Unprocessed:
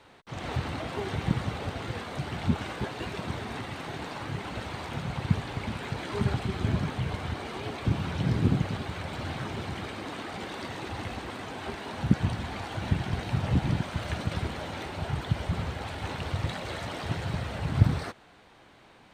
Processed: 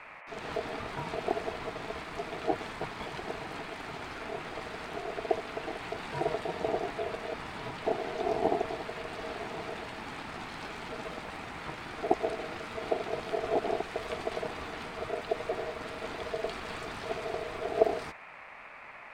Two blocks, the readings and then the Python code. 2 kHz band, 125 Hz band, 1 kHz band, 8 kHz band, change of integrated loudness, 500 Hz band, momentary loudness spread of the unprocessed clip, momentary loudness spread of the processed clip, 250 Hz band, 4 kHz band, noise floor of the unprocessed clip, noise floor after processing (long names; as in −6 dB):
−1.5 dB, −19.0 dB, +1.5 dB, −4.5 dB, −3.5 dB, +5.5 dB, 10 LU, 9 LU, −8.0 dB, −4.0 dB, −56 dBFS, −48 dBFS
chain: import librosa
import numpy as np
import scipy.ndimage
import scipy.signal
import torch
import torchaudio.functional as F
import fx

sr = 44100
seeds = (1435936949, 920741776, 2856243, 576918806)

y = fx.dmg_noise_band(x, sr, seeds[0], low_hz=1100.0, high_hz=2000.0, level_db=-44.0)
y = y * np.sin(2.0 * np.pi * 550.0 * np.arange(len(y)) / sr)
y = F.gain(torch.from_numpy(y), -1.5).numpy()